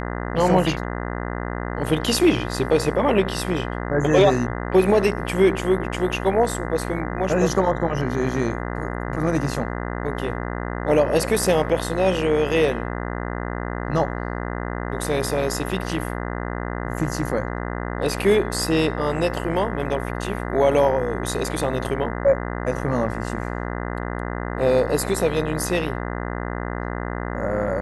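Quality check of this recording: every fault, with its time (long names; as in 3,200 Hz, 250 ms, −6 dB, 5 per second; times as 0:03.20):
mains buzz 60 Hz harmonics 34 −28 dBFS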